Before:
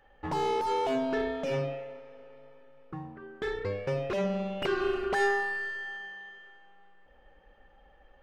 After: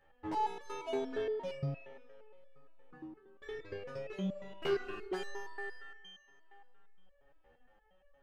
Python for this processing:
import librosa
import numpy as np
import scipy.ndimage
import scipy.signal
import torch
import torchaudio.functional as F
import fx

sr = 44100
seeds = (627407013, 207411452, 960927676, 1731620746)

y = fx.resonator_held(x, sr, hz=8.6, low_hz=80.0, high_hz=570.0)
y = F.gain(torch.from_numpy(y), 3.0).numpy()